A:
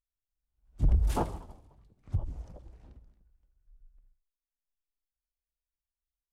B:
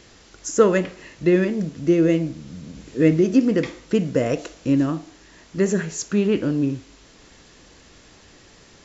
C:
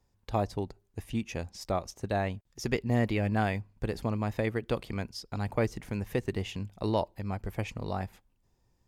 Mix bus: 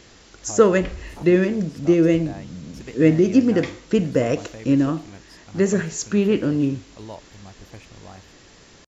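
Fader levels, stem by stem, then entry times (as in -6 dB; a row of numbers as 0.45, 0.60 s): -11.0, +1.0, -9.0 dB; 0.00, 0.00, 0.15 s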